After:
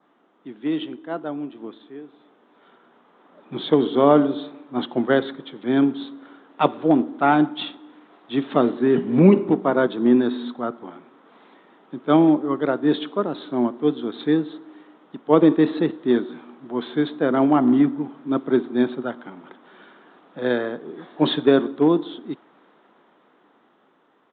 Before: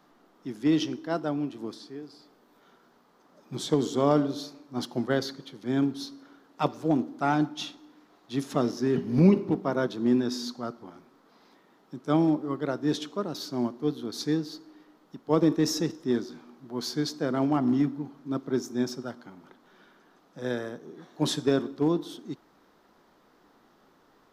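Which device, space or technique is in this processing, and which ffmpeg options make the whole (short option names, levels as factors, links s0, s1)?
Bluetooth headset: -af "adynamicequalizer=threshold=0.00224:dfrequency=2700:dqfactor=2:tfrequency=2700:tqfactor=2:attack=5:release=100:ratio=0.375:range=2:mode=cutabove:tftype=bell,highpass=210,dynaudnorm=f=770:g=7:m=3.76,aresample=8000,aresample=44100" -ar 16000 -c:a sbc -b:a 64k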